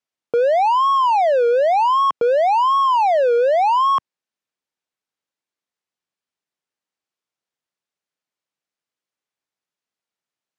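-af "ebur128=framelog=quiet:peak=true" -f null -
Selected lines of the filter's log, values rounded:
Integrated loudness:
  I:         -16.3 LUFS
  Threshold: -26.3 LUFS
Loudness range:
  LRA:         8.6 LU
  Threshold: -37.9 LUFS
  LRA low:   -24.5 LUFS
  LRA high:  -15.9 LUFS
True peak:
  Peak:      -10.7 dBFS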